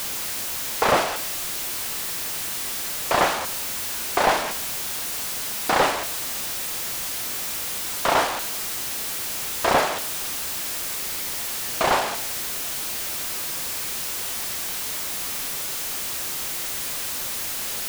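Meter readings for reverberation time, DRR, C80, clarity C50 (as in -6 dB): 0.65 s, 10.5 dB, 17.0 dB, 14.5 dB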